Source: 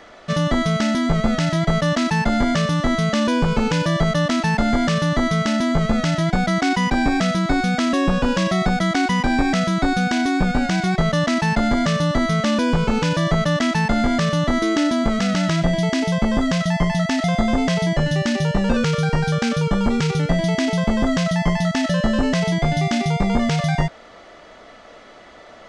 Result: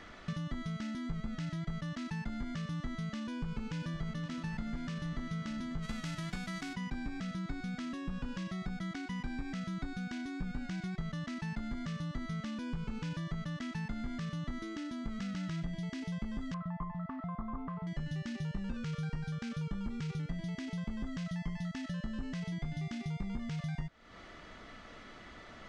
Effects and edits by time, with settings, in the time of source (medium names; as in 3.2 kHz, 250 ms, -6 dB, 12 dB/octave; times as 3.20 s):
3.30–4.23 s: echo throw 520 ms, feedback 75%, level -11 dB
5.82–6.73 s: formants flattened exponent 0.6
16.54–17.87 s: resonant low-pass 1.1 kHz, resonance Q 11
whole clip: treble shelf 2.5 kHz -11 dB; compression, threshold -35 dBFS; peaking EQ 600 Hz -15 dB 1.8 oct; trim +1.5 dB